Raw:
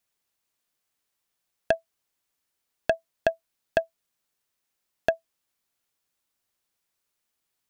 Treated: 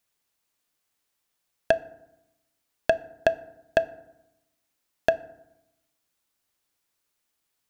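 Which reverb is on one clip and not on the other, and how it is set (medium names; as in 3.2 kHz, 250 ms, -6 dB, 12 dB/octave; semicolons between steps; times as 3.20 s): FDN reverb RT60 0.9 s, low-frequency decay 1.3×, high-frequency decay 0.5×, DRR 14.5 dB; trim +2 dB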